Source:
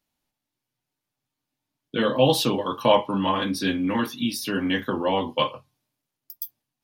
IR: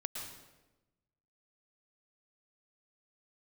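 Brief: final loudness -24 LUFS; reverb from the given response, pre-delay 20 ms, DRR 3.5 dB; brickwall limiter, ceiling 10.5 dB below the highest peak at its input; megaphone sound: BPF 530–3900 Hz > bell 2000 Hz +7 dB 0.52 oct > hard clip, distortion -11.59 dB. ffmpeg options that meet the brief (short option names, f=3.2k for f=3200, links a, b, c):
-filter_complex "[0:a]alimiter=limit=-16dB:level=0:latency=1,asplit=2[a][b];[1:a]atrim=start_sample=2205,adelay=20[c];[b][c]afir=irnorm=-1:irlink=0,volume=-3.5dB[d];[a][d]amix=inputs=2:normalize=0,highpass=530,lowpass=3.9k,equalizer=f=2k:t=o:w=0.52:g=7,asoftclip=type=hard:threshold=-25dB,volume=6dB"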